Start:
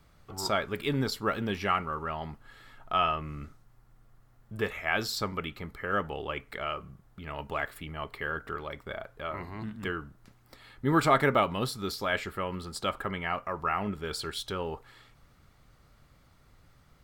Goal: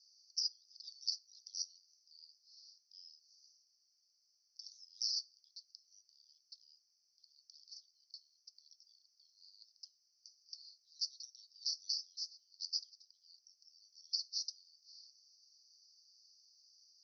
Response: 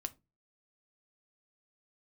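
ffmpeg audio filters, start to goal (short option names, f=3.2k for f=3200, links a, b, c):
-af "asuperpass=centerf=5200:order=12:qfactor=3.2,acompressor=threshold=-49dB:ratio=6,volume=13.5dB"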